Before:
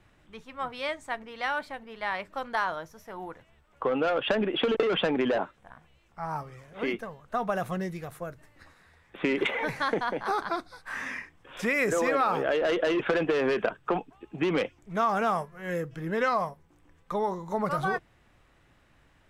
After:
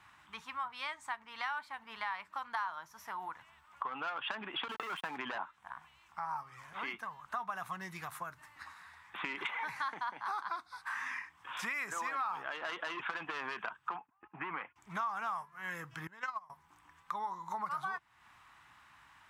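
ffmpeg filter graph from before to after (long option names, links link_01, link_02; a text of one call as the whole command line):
ffmpeg -i in.wav -filter_complex "[0:a]asettb=1/sr,asplit=3[link_01][link_02][link_03];[link_01]atrim=end=4.684[link_04];[link_02]atrim=start=4.68:end=5.18,asetpts=PTS-STARTPTS,afade=type=in:duration=0.004:curve=qsin,afade=type=out:start_time=0.496:duration=0.004:curve=qsin,acrossover=split=3200[link_05][link_06];[link_06]acompressor=threshold=-42dB:ratio=4:attack=1:release=60[link_07];[link_05][link_07]amix=inputs=2:normalize=0,agate=range=-18dB:threshold=-31dB:ratio=16:release=100:detection=peak,aeval=exprs='sgn(val(0))*max(abs(val(0))-0.0075,0)':channel_layout=same[link_08];[link_03]atrim=start=5.176[link_09];[link_04][link_08]acrossfade=duration=0.004:curve1=hsin:curve2=qsin[link_10];[link_10][link_09]acrossfade=duration=0.004:curve1=qsin:curve2=hsin,asettb=1/sr,asplit=3[link_11][link_12][link_13];[link_11]atrim=end=13.964[link_14];[link_12]atrim=start=13.96:end=14.76,asetpts=PTS-STARTPTS,afade=type=in:duration=0.004:curve=qsin,afade=type=out:start_time=0.796:duration=0.004:curve=qsin,agate=range=-17dB:threshold=-50dB:ratio=16:release=100:detection=peak,lowpass=frequency=2100:width=0.5412,lowpass=frequency=2100:width=1.3066,lowshelf=frequency=450:gain=-6.5[link_15];[link_13]atrim=start=14.756[link_16];[link_14][link_15]acrossfade=duration=0.004:curve1=hsin:curve2=qsin[link_17];[link_17][link_16]acrossfade=duration=0.004:curve1=qsin:curve2=hsin,asettb=1/sr,asplit=3[link_18][link_19][link_20];[link_18]atrim=end=16.074[link_21];[link_19]atrim=start=16.07:end=16.5,asetpts=PTS-STARTPTS,afade=type=in:duration=0.004:curve=qsin,afade=type=out:start_time=0.426:duration=0.004:curve=qsin,agate=range=-24dB:threshold=-24dB:ratio=16:release=100:detection=peak,equalizer=frequency=7000:width_type=o:width=0.39:gain=6.5[link_22];[link_20]atrim=start=16.496[link_23];[link_21][link_22]acrossfade=duration=0.004:curve1=hsin:curve2=qsin[link_24];[link_24][link_23]acrossfade=duration=0.004:curve1=qsin:curve2=hsin,highpass=64,lowshelf=frequency=710:width_type=q:width=3:gain=-11,acompressor=threshold=-43dB:ratio=3,volume=3dB" out.wav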